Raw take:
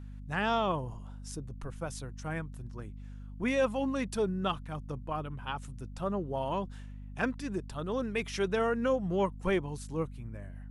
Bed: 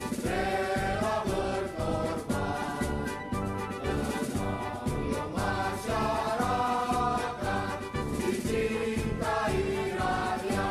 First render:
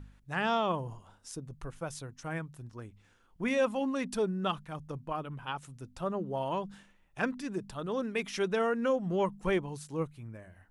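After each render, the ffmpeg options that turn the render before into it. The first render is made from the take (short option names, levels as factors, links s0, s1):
-af "bandreject=f=50:t=h:w=4,bandreject=f=100:t=h:w=4,bandreject=f=150:t=h:w=4,bandreject=f=200:t=h:w=4,bandreject=f=250:t=h:w=4"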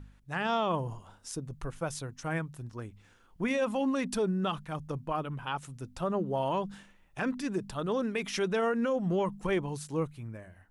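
-af "dynaudnorm=f=230:g=5:m=1.58,alimiter=limit=0.0841:level=0:latency=1:release=36"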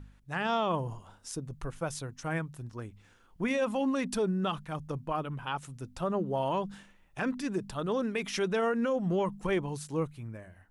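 -af anull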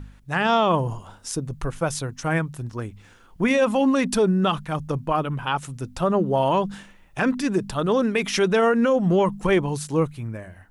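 -af "volume=3.16"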